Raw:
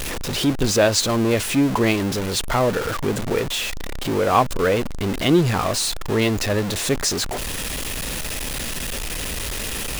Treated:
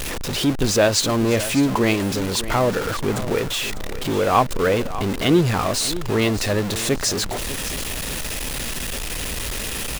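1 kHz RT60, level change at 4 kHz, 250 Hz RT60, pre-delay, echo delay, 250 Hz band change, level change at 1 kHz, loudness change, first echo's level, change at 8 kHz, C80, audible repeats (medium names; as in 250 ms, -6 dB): no reverb, 0.0 dB, no reverb, no reverb, 598 ms, 0.0 dB, 0.0 dB, 0.0 dB, -14.0 dB, 0.0 dB, no reverb, 2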